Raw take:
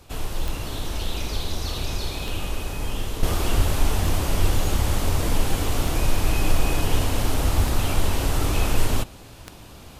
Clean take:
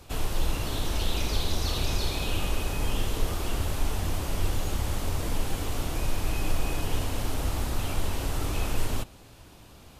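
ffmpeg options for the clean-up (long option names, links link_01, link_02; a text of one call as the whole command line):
ffmpeg -i in.wav -filter_complex "[0:a]adeclick=threshold=4,asplit=3[link_01][link_02][link_03];[link_01]afade=type=out:start_time=3.56:duration=0.02[link_04];[link_02]highpass=frequency=140:width=0.5412,highpass=frequency=140:width=1.3066,afade=type=in:start_time=3.56:duration=0.02,afade=type=out:start_time=3.68:duration=0.02[link_05];[link_03]afade=type=in:start_time=3.68:duration=0.02[link_06];[link_04][link_05][link_06]amix=inputs=3:normalize=0,asplit=3[link_07][link_08][link_09];[link_07]afade=type=out:start_time=7.56:duration=0.02[link_10];[link_08]highpass=frequency=140:width=0.5412,highpass=frequency=140:width=1.3066,afade=type=in:start_time=7.56:duration=0.02,afade=type=out:start_time=7.68:duration=0.02[link_11];[link_09]afade=type=in:start_time=7.68:duration=0.02[link_12];[link_10][link_11][link_12]amix=inputs=3:normalize=0,asetnsamples=nb_out_samples=441:pad=0,asendcmd='3.23 volume volume -7dB',volume=0dB" out.wav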